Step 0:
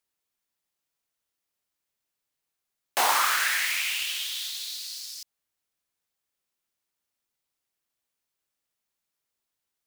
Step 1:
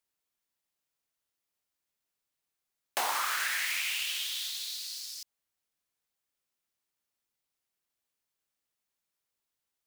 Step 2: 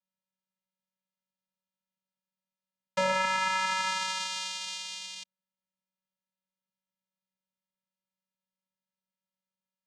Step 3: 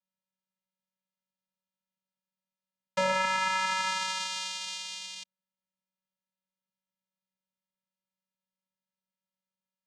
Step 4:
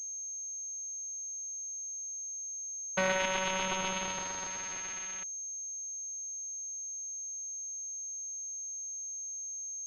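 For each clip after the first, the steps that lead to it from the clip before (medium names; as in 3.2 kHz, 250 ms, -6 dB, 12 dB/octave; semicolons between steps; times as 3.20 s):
compression, threshold -25 dBFS, peak gain reduction 7 dB; trim -2.5 dB
waveshaping leveller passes 2; vocoder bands 4, square 188 Hz; trim -2.5 dB
no audible change
self-modulated delay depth 0.45 ms; class-D stage that switches slowly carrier 6.4 kHz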